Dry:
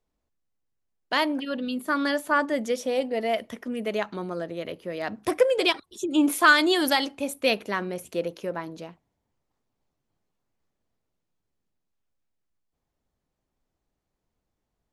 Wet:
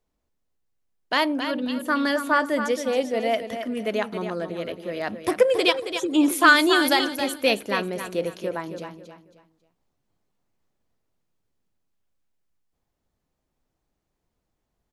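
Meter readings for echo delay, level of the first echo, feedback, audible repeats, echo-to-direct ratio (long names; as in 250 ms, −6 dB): 272 ms, −9.0 dB, 29%, 3, −8.5 dB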